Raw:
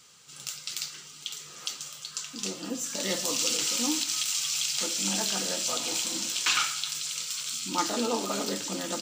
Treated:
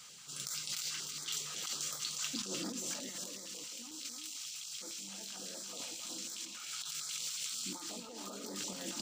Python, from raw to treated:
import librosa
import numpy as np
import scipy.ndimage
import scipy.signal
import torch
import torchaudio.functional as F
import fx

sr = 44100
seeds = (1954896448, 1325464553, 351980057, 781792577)

p1 = scipy.signal.sosfilt(scipy.signal.butter(2, 120.0, 'highpass', fs=sr, output='sos'), x)
p2 = fx.over_compress(p1, sr, threshold_db=-39.0, ratio=-1.0)
p3 = p2 + fx.echo_single(p2, sr, ms=302, db=-6.0, dry=0)
p4 = fx.filter_held_notch(p3, sr, hz=11.0, low_hz=350.0, high_hz=2800.0)
y = p4 * 10.0 ** (-4.5 / 20.0)